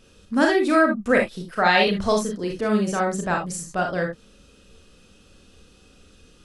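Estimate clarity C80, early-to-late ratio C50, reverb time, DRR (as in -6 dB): 18.0 dB, 6.0 dB, no single decay rate, 1.0 dB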